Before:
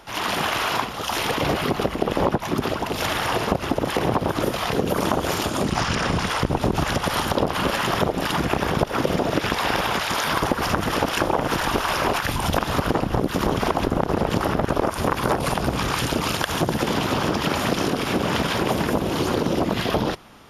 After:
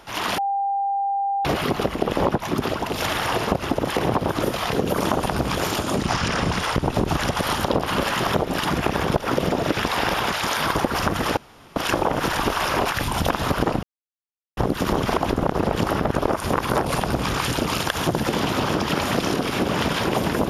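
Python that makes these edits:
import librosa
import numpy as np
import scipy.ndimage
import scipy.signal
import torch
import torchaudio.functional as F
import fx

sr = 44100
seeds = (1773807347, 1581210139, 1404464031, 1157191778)

y = fx.edit(x, sr, fx.bleep(start_s=0.38, length_s=1.07, hz=795.0, db=-20.0),
    fx.insert_room_tone(at_s=11.04, length_s=0.39),
    fx.insert_silence(at_s=13.11, length_s=0.74),
    fx.duplicate(start_s=15.51, length_s=0.33, to_s=5.23), tone=tone)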